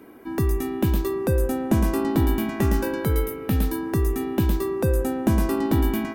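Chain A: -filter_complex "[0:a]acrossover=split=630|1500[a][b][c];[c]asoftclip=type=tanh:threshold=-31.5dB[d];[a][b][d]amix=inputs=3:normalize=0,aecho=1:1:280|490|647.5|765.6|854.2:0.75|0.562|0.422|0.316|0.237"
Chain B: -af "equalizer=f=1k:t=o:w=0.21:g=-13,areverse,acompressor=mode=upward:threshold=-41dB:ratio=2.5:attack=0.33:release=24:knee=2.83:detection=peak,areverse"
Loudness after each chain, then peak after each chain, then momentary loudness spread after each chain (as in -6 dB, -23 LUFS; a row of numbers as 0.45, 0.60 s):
-21.0, -24.0 LUFS; -5.0, -8.5 dBFS; 3, 3 LU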